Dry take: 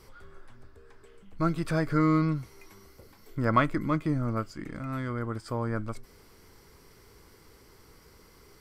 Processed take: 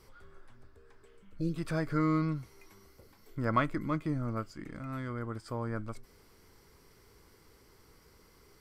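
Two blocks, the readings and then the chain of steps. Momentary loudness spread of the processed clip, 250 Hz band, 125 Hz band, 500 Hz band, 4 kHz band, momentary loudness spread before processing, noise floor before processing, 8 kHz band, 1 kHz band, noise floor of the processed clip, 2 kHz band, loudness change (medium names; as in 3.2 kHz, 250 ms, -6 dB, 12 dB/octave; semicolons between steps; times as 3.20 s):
14 LU, -5.0 dB, -5.0 dB, -5.0 dB, -5.0 dB, 14 LU, -57 dBFS, no reading, -5.5 dB, -62 dBFS, -5.0 dB, -5.0 dB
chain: spectral replace 1.25–1.53 s, 620–2400 Hz before; trim -5 dB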